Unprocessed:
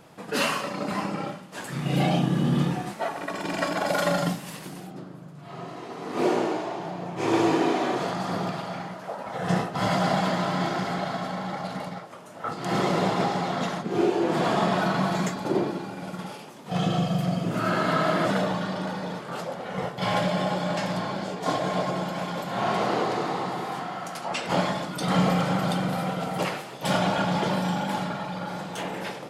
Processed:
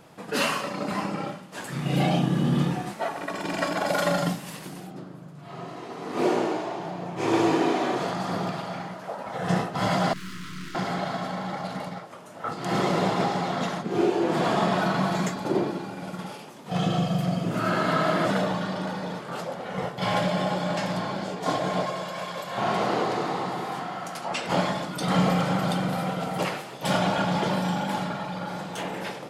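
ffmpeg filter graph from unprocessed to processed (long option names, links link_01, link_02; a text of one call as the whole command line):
ffmpeg -i in.wav -filter_complex "[0:a]asettb=1/sr,asplit=3[link_01][link_02][link_03];[link_01]atrim=end=10.134[link_04];[link_02]atrim=start=10.13:end=10.75,asetpts=PTS-STARTPTS,afade=type=in:duration=0.004:curve=qsin,afade=type=out:start_time=0.616:duration=0.004:curve=qsin,aeval=exprs='(tanh(79.4*val(0)+0.6)-tanh(0.6))/79.4':channel_layout=same,asuperstop=centerf=660:order=8:qfactor=0.87,asplit=2[link_05][link_06];[link_06]adelay=27,volume=-2.5dB[link_07];[link_05][link_07]amix=inputs=2:normalize=0,atrim=end_sample=27342[link_08];[link_03]atrim=start=10.746[link_09];[link_04][link_08]acrossfade=duration=0.004:curve1=hsin:curve2=qsin[link_10];[link_10][link_09]acrossfade=duration=0.004:curve1=qsin:curve2=hsin,asettb=1/sr,asplit=3[link_11][link_12][link_13];[link_11]atrim=end=21.864[link_14];[link_12]atrim=start=21.86:end=22.58,asetpts=PTS-STARTPTS,afade=type=in:duration=0.004:curve=qsin,afade=type=out:start_time=0.716:duration=0.004:curve=qsin,lowshelf=frequency=490:gain=-8.5,aecho=1:1:1.8:0.39,atrim=end_sample=31752[link_15];[link_13]atrim=start=22.576[link_16];[link_14][link_15]acrossfade=duration=0.004:curve1=hsin:curve2=qsin[link_17];[link_17][link_16]acrossfade=duration=0.004:curve1=qsin:curve2=hsin" out.wav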